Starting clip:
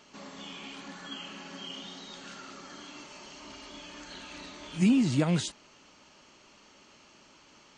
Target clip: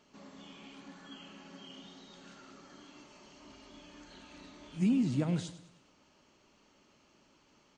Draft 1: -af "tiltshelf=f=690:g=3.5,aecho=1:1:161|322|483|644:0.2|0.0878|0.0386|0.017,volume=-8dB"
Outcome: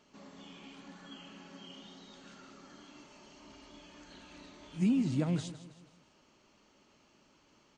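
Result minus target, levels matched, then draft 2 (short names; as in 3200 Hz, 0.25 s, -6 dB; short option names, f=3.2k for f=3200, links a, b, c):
echo 59 ms late
-af "tiltshelf=f=690:g=3.5,aecho=1:1:102|204|306|408:0.2|0.0878|0.0386|0.017,volume=-8dB"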